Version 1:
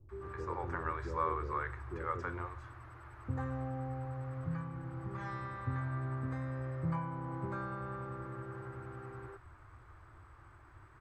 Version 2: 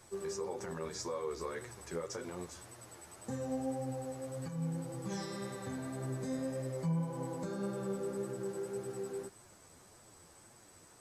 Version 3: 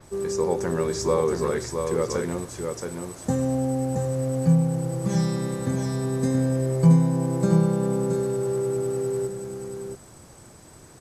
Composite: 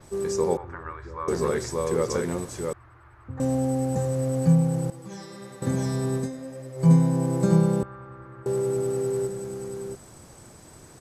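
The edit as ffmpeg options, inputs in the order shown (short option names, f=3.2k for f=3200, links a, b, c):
-filter_complex "[0:a]asplit=3[a][b][c];[1:a]asplit=2[d][e];[2:a]asplit=6[f][g][h][i][j][k];[f]atrim=end=0.572[l];[a]atrim=start=0.568:end=1.282[m];[g]atrim=start=1.278:end=2.732[n];[b]atrim=start=2.728:end=3.402[o];[h]atrim=start=3.398:end=4.902[p];[d]atrim=start=4.898:end=5.622[q];[i]atrim=start=5.618:end=6.32[r];[e]atrim=start=6.16:end=6.91[s];[j]atrim=start=6.75:end=7.832[t];[c]atrim=start=7.828:end=8.462[u];[k]atrim=start=8.458[v];[l][m]acrossfade=d=0.004:c1=hsin:c2=hsin[w];[w][n]acrossfade=d=0.004:c1=hsin:c2=hsin[x];[x][o]acrossfade=d=0.004:c1=hsin:c2=hsin[y];[y][p]acrossfade=d=0.004:c1=hsin:c2=hsin[z];[z][q]acrossfade=d=0.004:c1=hsin:c2=hsin[aa];[aa][r]acrossfade=d=0.004:c1=hsin:c2=hsin[ab];[ab][s]acrossfade=d=0.16:c1=tri:c2=tri[ac];[ac][t]acrossfade=d=0.16:c1=tri:c2=tri[ad];[ad][u]acrossfade=d=0.004:c1=hsin:c2=hsin[ae];[ae][v]acrossfade=d=0.004:c1=hsin:c2=hsin"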